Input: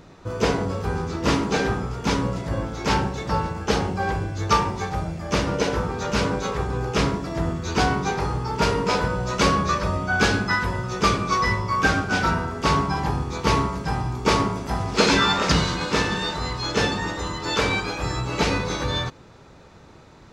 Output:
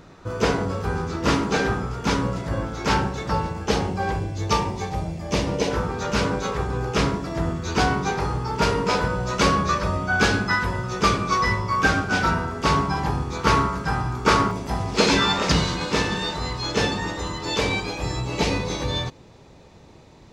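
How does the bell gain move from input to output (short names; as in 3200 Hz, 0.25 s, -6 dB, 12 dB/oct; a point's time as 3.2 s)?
bell 1400 Hz 0.54 oct
+3 dB
from 3.33 s -3 dB
from 4.19 s -9.5 dB
from 5.71 s +1 dB
from 13.4 s +8.5 dB
from 14.51 s -3.5 dB
from 17.45 s -9.5 dB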